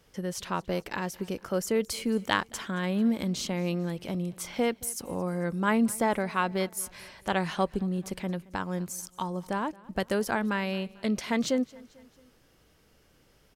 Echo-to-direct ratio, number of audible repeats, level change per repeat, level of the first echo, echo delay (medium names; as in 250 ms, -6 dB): -21.5 dB, 3, -5.5 dB, -23.0 dB, 222 ms